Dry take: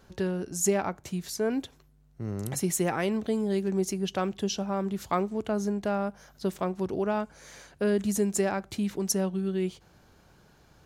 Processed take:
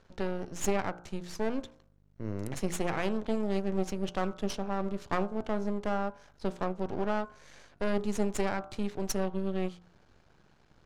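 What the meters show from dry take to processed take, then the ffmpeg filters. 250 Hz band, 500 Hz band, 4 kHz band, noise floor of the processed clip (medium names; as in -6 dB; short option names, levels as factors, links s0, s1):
-4.5 dB, -4.0 dB, -5.0 dB, -64 dBFS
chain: -af "aeval=exprs='max(val(0),0)':c=same,bandreject=f=59.01:t=h:w=4,bandreject=f=118.02:t=h:w=4,bandreject=f=177.03:t=h:w=4,bandreject=f=236.04:t=h:w=4,bandreject=f=295.05:t=h:w=4,bandreject=f=354.06:t=h:w=4,bandreject=f=413.07:t=h:w=4,bandreject=f=472.08:t=h:w=4,bandreject=f=531.09:t=h:w=4,bandreject=f=590.1:t=h:w=4,bandreject=f=649.11:t=h:w=4,bandreject=f=708.12:t=h:w=4,bandreject=f=767.13:t=h:w=4,bandreject=f=826.14:t=h:w=4,bandreject=f=885.15:t=h:w=4,bandreject=f=944.16:t=h:w=4,bandreject=f=1003.17:t=h:w=4,bandreject=f=1062.18:t=h:w=4,bandreject=f=1121.19:t=h:w=4,bandreject=f=1180.2:t=h:w=4,bandreject=f=1239.21:t=h:w=4,bandreject=f=1298.22:t=h:w=4,bandreject=f=1357.23:t=h:w=4,bandreject=f=1416.24:t=h:w=4,bandreject=f=1475.25:t=h:w=4,bandreject=f=1534.26:t=h:w=4,bandreject=f=1593.27:t=h:w=4,adynamicsmooth=sensitivity=4:basefreq=6400"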